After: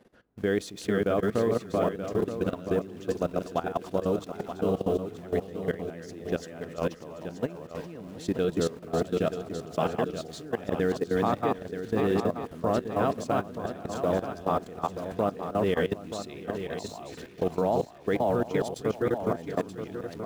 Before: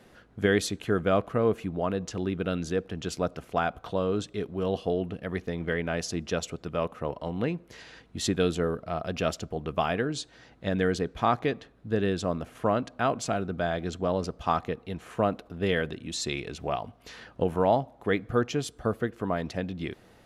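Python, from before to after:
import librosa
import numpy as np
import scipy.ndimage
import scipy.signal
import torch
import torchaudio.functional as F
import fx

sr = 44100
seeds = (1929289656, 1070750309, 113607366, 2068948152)

p1 = fx.reverse_delay_fb(x, sr, ms=367, feedback_pct=41, wet_db=-1.5)
p2 = fx.peak_eq(p1, sr, hz=360.0, db=7.0, octaves=2.9)
p3 = fx.quant_dither(p2, sr, seeds[0], bits=6, dither='none')
p4 = p2 + (p3 * 10.0 ** (-7.0 / 20.0))
p5 = fx.level_steps(p4, sr, step_db=17)
p6 = p5 + 10.0 ** (-9.5 / 20.0) * np.pad(p5, (int(929 * sr / 1000.0), 0))[:len(p5)]
y = p6 * 10.0 ** (-7.5 / 20.0)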